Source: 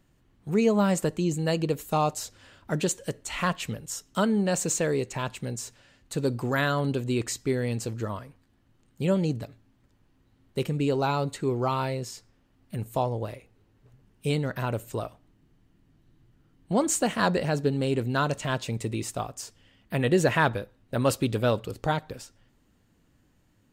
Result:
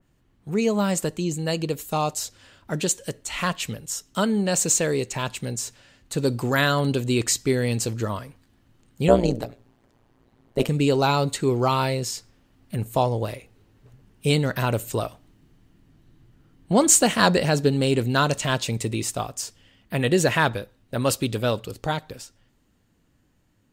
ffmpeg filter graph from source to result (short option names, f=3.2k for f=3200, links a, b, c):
-filter_complex "[0:a]asettb=1/sr,asplit=3[a][b][c];[a]atrim=end=9.084[d];[b]atrim=start=9.08:end=10.69,asetpts=PTS-STARTPTS,afade=t=in:d=0.004:c=qsin,afade=t=out:st=1.606:d=0.004:c=qsin,equalizer=f=650:w=0.58:g=10,bandreject=f=60:t=h:w=6,bandreject=f=120:t=h:w=6,bandreject=f=180:t=h:w=6,bandreject=f=240:t=h:w=6,bandreject=f=300:t=h:w=6,bandreject=f=360:t=h:w=6,bandreject=f=420:t=h:w=6,bandreject=f=480:t=h:w=6,bandreject=f=540:t=h:w=6,bandreject=f=600:t=h:w=6,tremolo=f=120:d=0.919[e];[c]atrim=start=10.686[f];[d][e]acrossfade=d=0.004:c1=hsin:c2=qsin[g];[g][f]acrossfade=d=0.004:c1=qsin:c2=hsin,dynaudnorm=f=520:g=21:m=8dB,adynamicequalizer=threshold=0.0112:dfrequency=2500:dqfactor=0.7:tfrequency=2500:tqfactor=0.7:attack=5:release=100:ratio=0.375:range=3:mode=boostabove:tftype=highshelf"